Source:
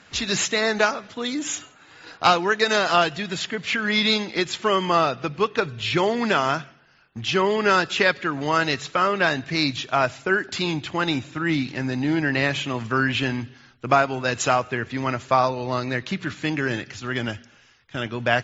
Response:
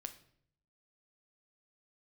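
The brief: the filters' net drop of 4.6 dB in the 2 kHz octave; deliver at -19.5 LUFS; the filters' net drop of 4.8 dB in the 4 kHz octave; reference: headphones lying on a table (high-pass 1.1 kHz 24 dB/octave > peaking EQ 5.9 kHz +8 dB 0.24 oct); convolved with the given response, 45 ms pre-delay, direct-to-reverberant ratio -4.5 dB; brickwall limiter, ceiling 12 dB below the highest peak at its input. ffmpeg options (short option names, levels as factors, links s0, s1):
-filter_complex "[0:a]equalizer=f=2000:t=o:g=-5,equalizer=f=4000:t=o:g=-5,alimiter=limit=0.133:level=0:latency=1,asplit=2[s0][s1];[1:a]atrim=start_sample=2205,adelay=45[s2];[s1][s2]afir=irnorm=-1:irlink=0,volume=2.51[s3];[s0][s3]amix=inputs=2:normalize=0,highpass=f=1100:w=0.5412,highpass=f=1100:w=1.3066,equalizer=f=5900:t=o:w=0.24:g=8,volume=2.51"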